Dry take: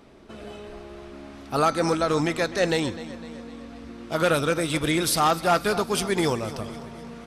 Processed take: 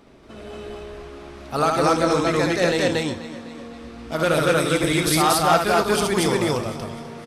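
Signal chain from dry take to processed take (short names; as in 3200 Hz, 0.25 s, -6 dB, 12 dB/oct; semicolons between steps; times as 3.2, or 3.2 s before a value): loudspeakers at several distances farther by 24 m -4 dB, 80 m 0 dB, 91 m -10 dB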